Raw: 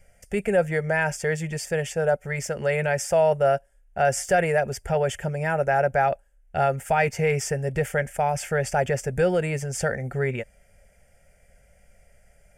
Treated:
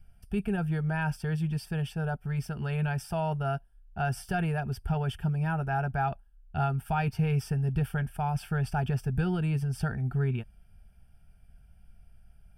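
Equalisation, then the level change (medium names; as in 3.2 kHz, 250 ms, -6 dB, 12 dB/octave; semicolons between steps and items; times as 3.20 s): bass shelf 380 Hz +8.5 dB; static phaser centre 2 kHz, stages 6; -5.0 dB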